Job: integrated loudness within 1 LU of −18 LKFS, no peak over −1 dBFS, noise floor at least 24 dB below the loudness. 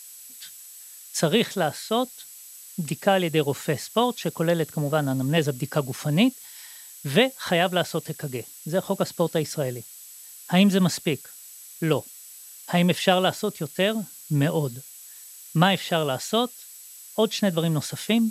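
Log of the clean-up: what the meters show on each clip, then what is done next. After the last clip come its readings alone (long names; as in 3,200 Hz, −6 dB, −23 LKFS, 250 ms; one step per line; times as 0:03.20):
interfering tone 7,800 Hz; level of the tone −48 dBFS; background noise floor −45 dBFS; target noise floor −49 dBFS; integrated loudness −24.5 LKFS; sample peak −3.5 dBFS; target loudness −18.0 LKFS
→ notch filter 7,800 Hz, Q 30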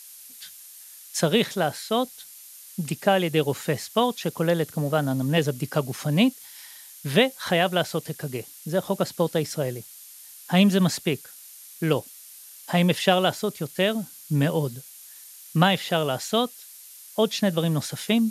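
interfering tone none found; background noise floor −46 dBFS; target noise floor −49 dBFS
→ noise reduction from a noise print 6 dB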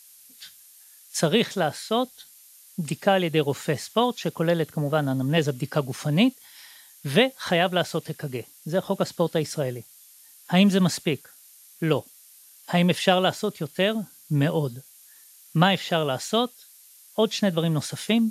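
background noise floor −52 dBFS; integrated loudness −24.5 LKFS; sample peak −3.5 dBFS; target loudness −18.0 LKFS
→ level +6.5 dB
brickwall limiter −1 dBFS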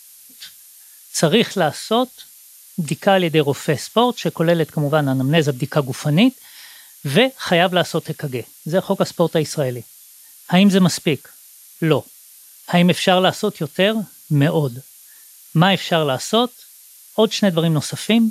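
integrated loudness −18.5 LKFS; sample peak −1.0 dBFS; background noise floor −45 dBFS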